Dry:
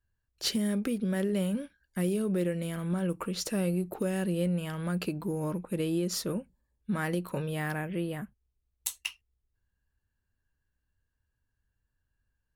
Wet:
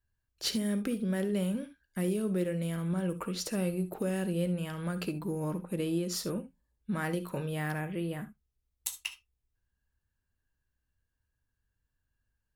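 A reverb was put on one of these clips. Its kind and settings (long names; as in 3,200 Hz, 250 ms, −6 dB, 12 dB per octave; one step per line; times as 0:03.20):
reverb whose tail is shaped and stops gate 90 ms rising, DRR 12 dB
level −2 dB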